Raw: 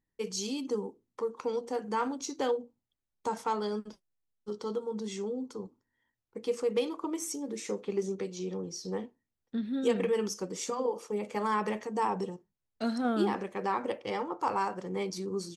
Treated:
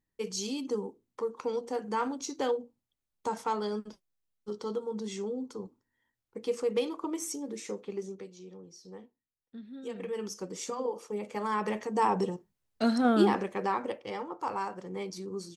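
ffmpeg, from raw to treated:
-af "volume=17dB,afade=t=out:st=7.3:d=1.11:silence=0.251189,afade=t=in:st=9.91:d=0.57:silence=0.316228,afade=t=in:st=11.49:d=0.77:silence=0.446684,afade=t=out:st=13.23:d=0.78:silence=0.375837"

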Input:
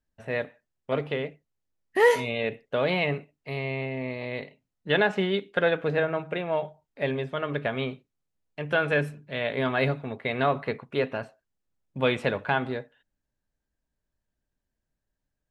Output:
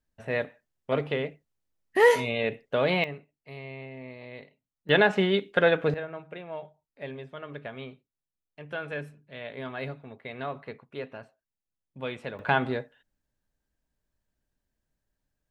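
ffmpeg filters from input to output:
-af "asetnsamples=n=441:p=0,asendcmd='3.04 volume volume -10dB;4.89 volume volume 2dB;5.94 volume volume -10.5dB;12.39 volume volume 1.5dB',volume=0.5dB"

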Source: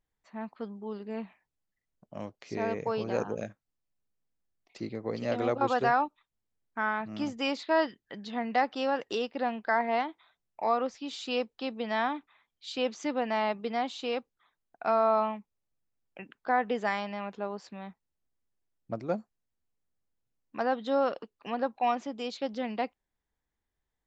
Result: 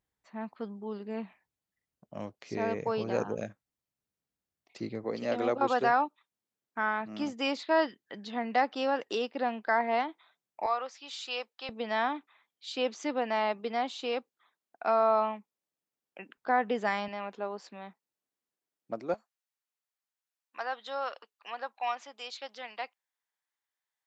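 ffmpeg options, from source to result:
-af "asetnsamples=n=441:p=0,asendcmd='5.04 highpass f 190;10.66 highpass f 790;11.69 highpass f 240;16.37 highpass f 85;17.08 highpass f 260;19.14 highpass f 970',highpass=60"

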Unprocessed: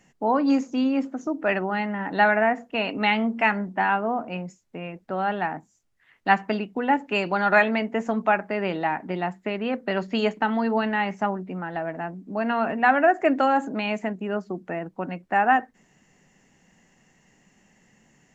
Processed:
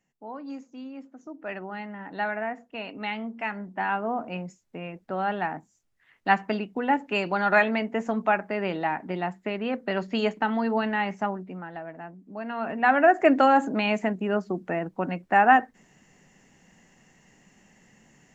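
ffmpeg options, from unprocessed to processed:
-af "volume=9dB,afade=t=in:st=1.06:d=0.63:silence=0.446684,afade=t=in:st=3.49:d=0.74:silence=0.398107,afade=t=out:st=11.12:d=0.72:silence=0.446684,afade=t=in:st=12.52:d=0.71:silence=0.281838"

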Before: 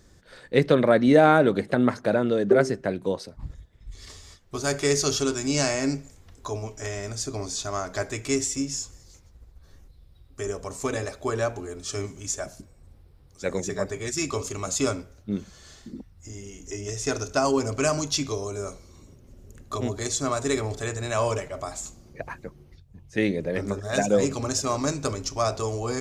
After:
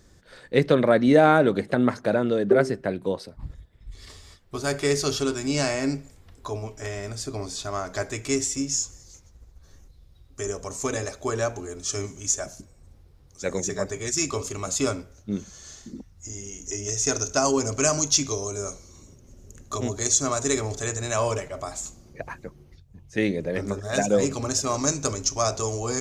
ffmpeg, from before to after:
-af "asetnsamples=n=441:p=0,asendcmd='2.38 equalizer g -5.5;7.85 equalizer g 1.5;8.69 equalizer g 8;14.31 equalizer g 1;15.14 equalizer g 11;21.16 equalizer g 3;24.74 equalizer g 11',equalizer=f=6.4k:t=o:w=0.44:g=0.5"

